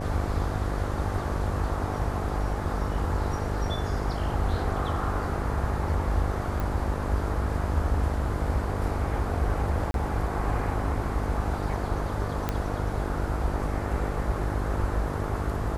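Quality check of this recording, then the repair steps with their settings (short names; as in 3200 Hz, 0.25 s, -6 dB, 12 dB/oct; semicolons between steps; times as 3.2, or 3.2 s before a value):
buzz 50 Hz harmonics 14 -32 dBFS
6.6 pop
9.91–9.94 gap 32 ms
12.49 pop -13 dBFS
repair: de-click; de-hum 50 Hz, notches 14; interpolate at 9.91, 32 ms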